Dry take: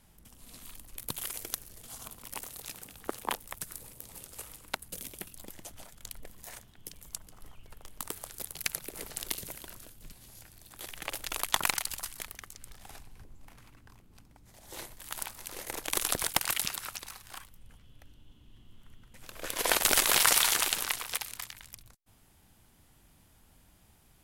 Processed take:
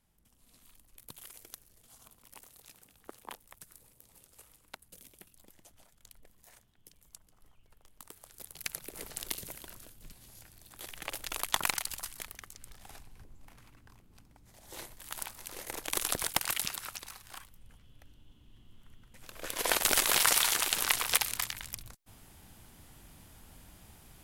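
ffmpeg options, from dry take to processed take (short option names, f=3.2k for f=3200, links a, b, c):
-af "volume=7dB,afade=t=in:st=8.18:d=0.84:silence=0.298538,afade=t=in:st=20.67:d=0.43:silence=0.354813"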